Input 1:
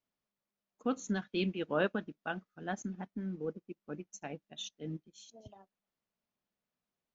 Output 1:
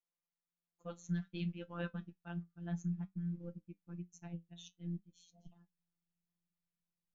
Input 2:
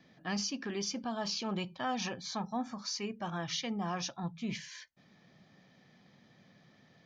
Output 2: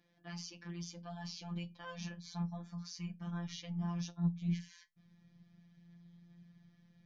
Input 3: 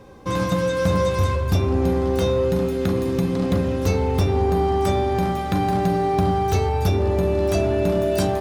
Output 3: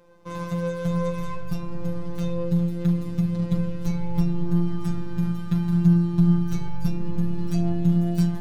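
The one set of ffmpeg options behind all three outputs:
-af "afftfilt=real='hypot(re,im)*cos(PI*b)':imag='0':win_size=1024:overlap=0.75,asubboost=boost=11:cutoff=150,flanger=delay=9.5:depth=2.4:regen=61:speed=0.57:shape=sinusoidal,volume=-3.5dB"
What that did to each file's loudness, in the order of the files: −5.5, −5.0, −4.0 LU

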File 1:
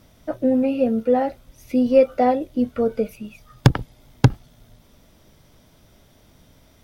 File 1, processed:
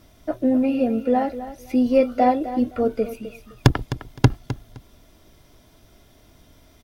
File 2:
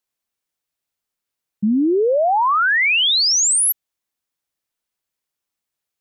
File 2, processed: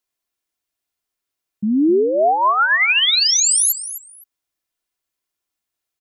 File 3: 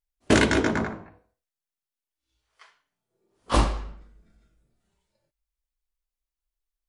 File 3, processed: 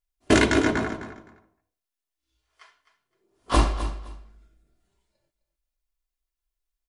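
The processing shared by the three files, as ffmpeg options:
-filter_complex "[0:a]aecho=1:1:2.9:0.35,asplit=2[link_01][link_02];[link_02]aecho=0:1:258|516:0.224|0.0425[link_03];[link_01][link_03]amix=inputs=2:normalize=0"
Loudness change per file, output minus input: −1.0, +0.5, +0.5 LU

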